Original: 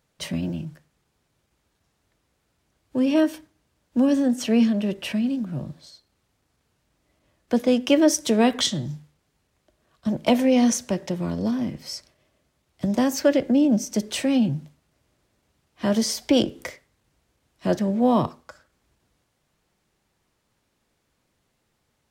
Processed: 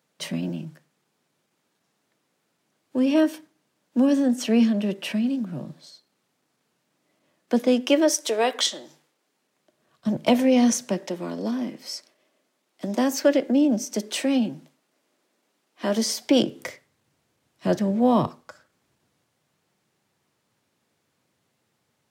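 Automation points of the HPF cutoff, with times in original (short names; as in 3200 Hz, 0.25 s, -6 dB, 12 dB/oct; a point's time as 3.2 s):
HPF 24 dB/oct
7.64 s 160 Hz
8.11 s 380 Hz
8.9 s 380 Hz
10.12 s 97 Hz
10.68 s 97 Hz
11.08 s 230 Hz
15.94 s 230 Hz
16.67 s 100 Hz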